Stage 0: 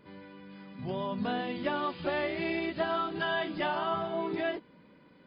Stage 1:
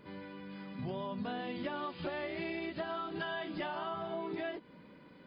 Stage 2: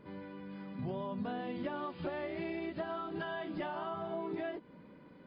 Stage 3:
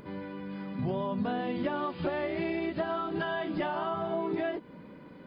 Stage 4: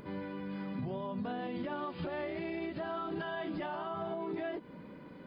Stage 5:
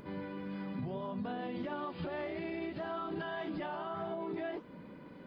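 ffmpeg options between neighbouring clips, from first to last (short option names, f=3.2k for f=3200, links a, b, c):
-af "acompressor=threshold=-38dB:ratio=6,volume=2dB"
-af "highshelf=f=2.1k:g=-10,volume=1dB"
-af "acompressor=mode=upward:threshold=-56dB:ratio=2.5,volume=7dB"
-af "alimiter=level_in=5dB:limit=-24dB:level=0:latency=1:release=104,volume=-5dB,volume=-1dB"
-af "flanger=delay=3.1:depth=9.2:regen=-87:speed=1.7:shape=sinusoidal,volume=3.5dB"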